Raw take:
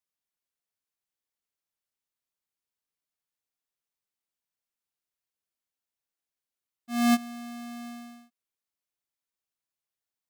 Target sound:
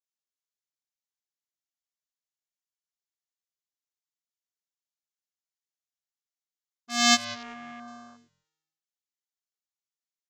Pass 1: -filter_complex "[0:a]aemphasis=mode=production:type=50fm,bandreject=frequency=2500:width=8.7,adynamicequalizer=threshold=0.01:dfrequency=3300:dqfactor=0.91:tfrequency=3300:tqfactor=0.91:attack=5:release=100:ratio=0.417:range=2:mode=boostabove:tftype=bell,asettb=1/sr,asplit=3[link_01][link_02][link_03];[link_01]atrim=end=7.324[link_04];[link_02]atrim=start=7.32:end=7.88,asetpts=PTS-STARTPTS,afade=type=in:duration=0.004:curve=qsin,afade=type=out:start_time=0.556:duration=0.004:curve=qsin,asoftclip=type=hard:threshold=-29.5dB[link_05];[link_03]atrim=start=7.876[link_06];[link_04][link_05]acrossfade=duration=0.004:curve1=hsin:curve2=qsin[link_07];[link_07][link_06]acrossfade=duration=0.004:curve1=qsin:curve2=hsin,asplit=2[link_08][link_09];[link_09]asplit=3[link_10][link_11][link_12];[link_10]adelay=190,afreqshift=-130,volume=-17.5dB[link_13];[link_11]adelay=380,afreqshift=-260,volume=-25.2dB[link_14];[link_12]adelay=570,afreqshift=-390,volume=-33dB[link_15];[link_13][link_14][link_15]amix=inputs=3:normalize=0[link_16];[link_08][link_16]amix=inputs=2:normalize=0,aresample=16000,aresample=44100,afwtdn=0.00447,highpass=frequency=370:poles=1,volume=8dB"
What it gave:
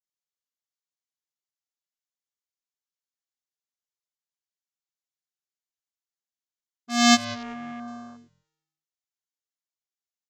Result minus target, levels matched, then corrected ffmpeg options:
500 Hz band +2.5 dB
-filter_complex "[0:a]aemphasis=mode=production:type=50fm,bandreject=frequency=2500:width=8.7,adynamicequalizer=threshold=0.01:dfrequency=3300:dqfactor=0.91:tfrequency=3300:tqfactor=0.91:attack=5:release=100:ratio=0.417:range=2:mode=boostabove:tftype=bell,asettb=1/sr,asplit=3[link_01][link_02][link_03];[link_01]atrim=end=7.324[link_04];[link_02]atrim=start=7.32:end=7.88,asetpts=PTS-STARTPTS,afade=type=in:duration=0.004:curve=qsin,afade=type=out:start_time=0.556:duration=0.004:curve=qsin,asoftclip=type=hard:threshold=-29.5dB[link_05];[link_03]atrim=start=7.876[link_06];[link_04][link_05]acrossfade=duration=0.004:curve1=hsin:curve2=qsin[link_07];[link_07][link_06]acrossfade=duration=0.004:curve1=qsin:curve2=hsin,asplit=2[link_08][link_09];[link_09]asplit=3[link_10][link_11][link_12];[link_10]adelay=190,afreqshift=-130,volume=-17.5dB[link_13];[link_11]adelay=380,afreqshift=-260,volume=-25.2dB[link_14];[link_12]adelay=570,afreqshift=-390,volume=-33dB[link_15];[link_13][link_14][link_15]amix=inputs=3:normalize=0[link_16];[link_08][link_16]amix=inputs=2:normalize=0,aresample=16000,aresample=44100,afwtdn=0.00447,highpass=frequency=1200:poles=1,volume=8dB"

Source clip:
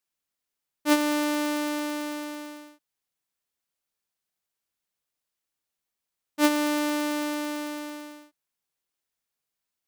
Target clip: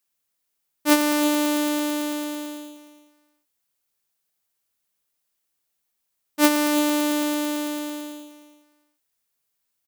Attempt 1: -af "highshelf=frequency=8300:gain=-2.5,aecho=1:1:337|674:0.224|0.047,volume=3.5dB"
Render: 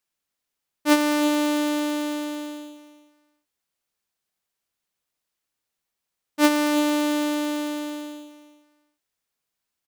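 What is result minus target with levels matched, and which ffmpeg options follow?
8,000 Hz band −4.0 dB
-af "highshelf=frequency=8300:gain=7.5,aecho=1:1:337|674:0.224|0.047,volume=3.5dB"

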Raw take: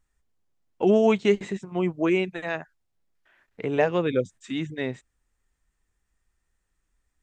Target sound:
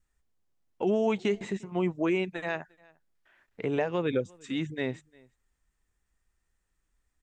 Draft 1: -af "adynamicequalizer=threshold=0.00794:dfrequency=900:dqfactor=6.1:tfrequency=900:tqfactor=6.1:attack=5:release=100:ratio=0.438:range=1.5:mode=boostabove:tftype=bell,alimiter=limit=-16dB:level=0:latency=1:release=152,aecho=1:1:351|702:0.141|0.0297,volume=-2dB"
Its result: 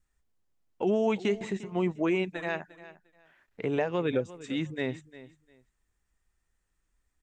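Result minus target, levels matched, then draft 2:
echo-to-direct +9.5 dB
-af "adynamicequalizer=threshold=0.00794:dfrequency=900:dqfactor=6.1:tfrequency=900:tqfactor=6.1:attack=5:release=100:ratio=0.438:range=1.5:mode=boostabove:tftype=bell,alimiter=limit=-16dB:level=0:latency=1:release=152,aecho=1:1:351:0.0473,volume=-2dB"

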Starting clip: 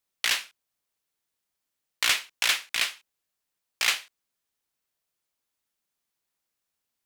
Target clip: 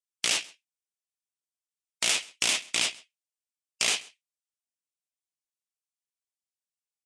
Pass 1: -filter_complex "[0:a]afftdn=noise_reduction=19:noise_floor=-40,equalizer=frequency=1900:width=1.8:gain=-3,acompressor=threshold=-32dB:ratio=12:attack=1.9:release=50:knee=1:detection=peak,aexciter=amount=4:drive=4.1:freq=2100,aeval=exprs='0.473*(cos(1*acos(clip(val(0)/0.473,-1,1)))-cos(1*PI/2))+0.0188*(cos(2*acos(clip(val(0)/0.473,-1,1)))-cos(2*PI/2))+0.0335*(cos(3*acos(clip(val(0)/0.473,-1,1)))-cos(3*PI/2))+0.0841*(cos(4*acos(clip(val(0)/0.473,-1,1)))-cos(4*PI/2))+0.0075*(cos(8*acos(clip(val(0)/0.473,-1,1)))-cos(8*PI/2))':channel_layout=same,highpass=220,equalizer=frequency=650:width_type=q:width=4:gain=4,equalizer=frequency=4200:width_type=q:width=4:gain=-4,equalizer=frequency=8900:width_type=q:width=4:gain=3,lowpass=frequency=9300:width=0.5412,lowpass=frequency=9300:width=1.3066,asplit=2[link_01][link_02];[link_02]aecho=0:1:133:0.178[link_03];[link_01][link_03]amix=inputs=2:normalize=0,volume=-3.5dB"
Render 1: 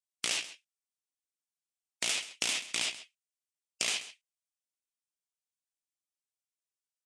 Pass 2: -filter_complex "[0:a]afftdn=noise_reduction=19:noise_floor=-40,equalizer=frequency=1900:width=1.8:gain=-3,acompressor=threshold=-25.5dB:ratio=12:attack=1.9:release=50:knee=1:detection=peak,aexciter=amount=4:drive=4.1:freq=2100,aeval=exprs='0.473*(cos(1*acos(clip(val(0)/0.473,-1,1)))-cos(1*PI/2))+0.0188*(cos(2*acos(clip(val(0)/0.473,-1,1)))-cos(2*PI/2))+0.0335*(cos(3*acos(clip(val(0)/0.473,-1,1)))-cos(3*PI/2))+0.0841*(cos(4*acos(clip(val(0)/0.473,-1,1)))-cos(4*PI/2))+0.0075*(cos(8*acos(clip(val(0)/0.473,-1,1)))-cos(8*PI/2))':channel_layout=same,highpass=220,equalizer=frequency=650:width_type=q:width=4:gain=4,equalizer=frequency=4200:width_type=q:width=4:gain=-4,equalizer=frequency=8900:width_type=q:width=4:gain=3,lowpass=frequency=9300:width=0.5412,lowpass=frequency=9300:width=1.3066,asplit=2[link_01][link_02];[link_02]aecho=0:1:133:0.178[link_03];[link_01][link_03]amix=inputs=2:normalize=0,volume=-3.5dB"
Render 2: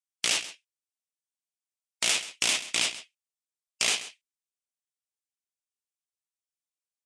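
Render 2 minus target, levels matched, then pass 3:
echo-to-direct +8 dB
-filter_complex "[0:a]afftdn=noise_reduction=19:noise_floor=-40,equalizer=frequency=1900:width=1.8:gain=-3,acompressor=threshold=-25.5dB:ratio=12:attack=1.9:release=50:knee=1:detection=peak,aexciter=amount=4:drive=4.1:freq=2100,aeval=exprs='0.473*(cos(1*acos(clip(val(0)/0.473,-1,1)))-cos(1*PI/2))+0.0188*(cos(2*acos(clip(val(0)/0.473,-1,1)))-cos(2*PI/2))+0.0335*(cos(3*acos(clip(val(0)/0.473,-1,1)))-cos(3*PI/2))+0.0841*(cos(4*acos(clip(val(0)/0.473,-1,1)))-cos(4*PI/2))+0.0075*(cos(8*acos(clip(val(0)/0.473,-1,1)))-cos(8*PI/2))':channel_layout=same,highpass=220,equalizer=frequency=650:width_type=q:width=4:gain=4,equalizer=frequency=4200:width_type=q:width=4:gain=-4,equalizer=frequency=8900:width_type=q:width=4:gain=3,lowpass=frequency=9300:width=0.5412,lowpass=frequency=9300:width=1.3066,asplit=2[link_01][link_02];[link_02]aecho=0:1:133:0.0708[link_03];[link_01][link_03]amix=inputs=2:normalize=0,volume=-3.5dB"

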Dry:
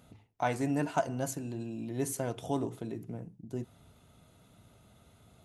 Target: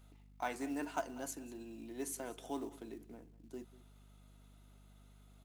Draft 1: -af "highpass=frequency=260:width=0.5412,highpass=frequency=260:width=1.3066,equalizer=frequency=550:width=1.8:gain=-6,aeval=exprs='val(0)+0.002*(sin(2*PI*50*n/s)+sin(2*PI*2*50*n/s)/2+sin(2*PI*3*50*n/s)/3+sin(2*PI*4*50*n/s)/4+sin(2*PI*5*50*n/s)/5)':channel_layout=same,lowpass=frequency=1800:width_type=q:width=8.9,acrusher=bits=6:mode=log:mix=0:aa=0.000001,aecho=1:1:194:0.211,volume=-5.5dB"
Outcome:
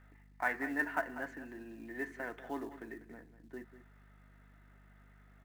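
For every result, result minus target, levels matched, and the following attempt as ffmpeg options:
2,000 Hz band +9.0 dB; echo-to-direct +6 dB
-af "highpass=frequency=260:width=0.5412,highpass=frequency=260:width=1.3066,equalizer=frequency=550:width=1.8:gain=-6,aeval=exprs='val(0)+0.002*(sin(2*PI*50*n/s)+sin(2*PI*2*50*n/s)/2+sin(2*PI*3*50*n/s)/3+sin(2*PI*4*50*n/s)/4+sin(2*PI*5*50*n/s)/5)':channel_layout=same,acrusher=bits=6:mode=log:mix=0:aa=0.000001,aecho=1:1:194:0.211,volume=-5.5dB"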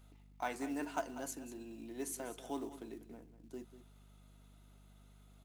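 echo-to-direct +6 dB
-af "highpass=frequency=260:width=0.5412,highpass=frequency=260:width=1.3066,equalizer=frequency=550:width=1.8:gain=-6,aeval=exprs='val(0)+0.002*(sin(2*PI*50*n/s)+sin(2*PI*2*50*n/s)/2+sin(2*PI*3*50*n/s)/3+sin(2*PI*4*50*n/s)/4+sin(2*PI*5*50*n/s)/5)':channel_layout=same,acrusher=bits=6:mode=log:mix=0:aa=0.000001,aecho=1:1:194:0.106,volume=-5.5dB"

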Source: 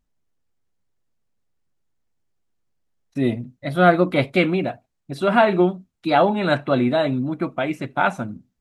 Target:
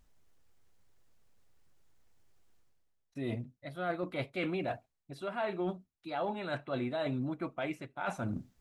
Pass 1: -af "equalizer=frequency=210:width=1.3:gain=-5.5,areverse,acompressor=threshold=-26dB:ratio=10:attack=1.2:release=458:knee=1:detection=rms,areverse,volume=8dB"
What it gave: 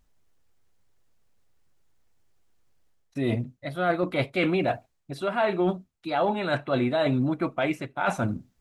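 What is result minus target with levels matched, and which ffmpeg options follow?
downward compressor: peak gain reduction −10.5 dB
-af "equalizer=frequency=210:width=1.3:gain=-5.5,areverse,acompressor=threshold=-37.5dB:ratio=10:attack=1.2:release=458:knee=1:detection=rms,areverse,volume=8dB"

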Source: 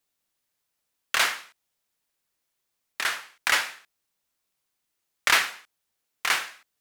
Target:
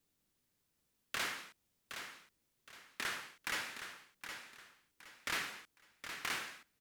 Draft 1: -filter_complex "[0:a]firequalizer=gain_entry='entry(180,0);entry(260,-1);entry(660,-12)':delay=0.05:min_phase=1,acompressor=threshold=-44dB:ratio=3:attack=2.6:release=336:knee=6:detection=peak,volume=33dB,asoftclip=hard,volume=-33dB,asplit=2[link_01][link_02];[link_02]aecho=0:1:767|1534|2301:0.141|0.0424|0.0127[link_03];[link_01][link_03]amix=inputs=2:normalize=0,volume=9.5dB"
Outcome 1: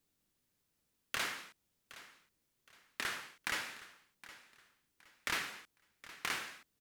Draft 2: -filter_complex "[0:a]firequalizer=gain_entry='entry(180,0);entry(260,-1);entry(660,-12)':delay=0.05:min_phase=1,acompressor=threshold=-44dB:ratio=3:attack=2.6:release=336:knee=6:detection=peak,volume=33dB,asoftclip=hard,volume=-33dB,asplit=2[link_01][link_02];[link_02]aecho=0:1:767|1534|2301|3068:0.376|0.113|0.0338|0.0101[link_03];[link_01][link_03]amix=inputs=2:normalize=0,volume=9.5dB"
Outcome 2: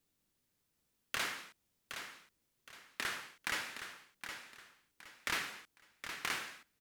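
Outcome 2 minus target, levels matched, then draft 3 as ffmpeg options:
gain into a clipping stage and back: distortion −7 dB
-filter_complex "[0:a]firequalizer=gain_entry='entry(180,0);entry(260,-1);entry(660,-12)':delay=0.05:min_phase=1,acompressor=threshold=-44dB:ratio=3:attack=2.6:release=336:knee=6:detection=peak,volume=40.5dB,asoftclip=hard,volume=-40.5dB,asplit=2[link_01][link_02];[link_02]aecho=0:1:767|1534|2301|3068:0.376|0.113|0.0338|0.0101[link_03];[link_01][link_03]amix=inputs=2:normalize=0,volume=9.5dB"

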